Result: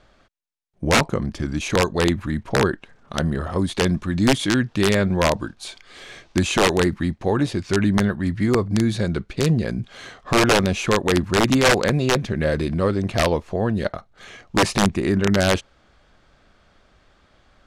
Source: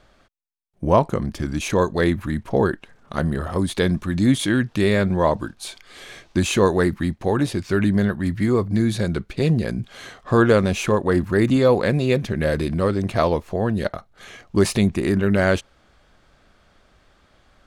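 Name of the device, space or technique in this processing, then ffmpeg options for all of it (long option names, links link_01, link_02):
overflowing digital effects unit: -af "aeval=exprs='(mod(2.82*val(0)+1,2)-1)/2.82':channel_layout=same,lowpass=8100"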